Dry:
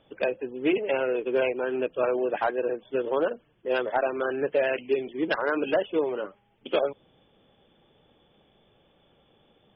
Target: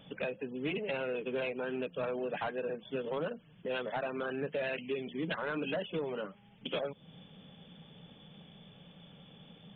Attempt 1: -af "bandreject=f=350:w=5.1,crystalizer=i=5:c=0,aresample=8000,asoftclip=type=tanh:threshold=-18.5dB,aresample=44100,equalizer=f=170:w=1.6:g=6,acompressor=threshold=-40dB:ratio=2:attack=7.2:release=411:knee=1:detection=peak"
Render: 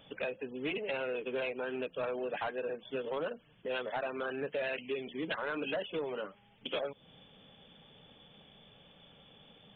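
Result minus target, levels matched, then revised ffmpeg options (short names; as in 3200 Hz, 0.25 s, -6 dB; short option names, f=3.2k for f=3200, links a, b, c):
125 Hz band -6.5 dB
-af "bandreject=f=350:w=5.1,crystalizer=i=5:c=0,aresample=8000,asoftclip=type=tanh:threshold=-18.5dB,aresample=44100,equalizer=f=170:w=1.6:g=17,acompressor=threshold=-40dB:ratio=2:attack=7.2:release=411:knee=1:detection=peak"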